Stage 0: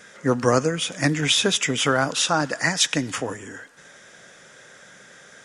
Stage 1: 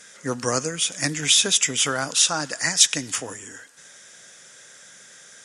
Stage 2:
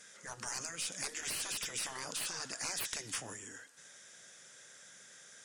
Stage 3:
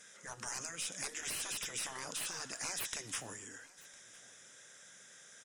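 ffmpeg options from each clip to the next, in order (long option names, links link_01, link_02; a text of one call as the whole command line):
ffmpeg -i in.wav -af "equalizer=frequency=9200:width_type=o:width=2.6:gain=15,volume=-7dB" out.wav
ffmpeg -i in.wav -af "aeval=exprs='(tanh(1.78*val(0)+0.35)-tanh(0.35))/1.78':channel_layout=same,aeval=exprs='0.447*(abs(mod(val(0)/0.447+3,4)-2)-1)':channel_layout=same,afftfilt=real='re*lt(hypot(re,im),0.1)':imag='im*lt(hypot(re,im),0.1)':win_size=1024:overlap=0.75,volume=-8dB" out.wav
ffmpeg -i in.wav -af "bandreject=frequency=4500:width=9.3,aecho=1:1:1006:0.075,volume=-1dB" out.wav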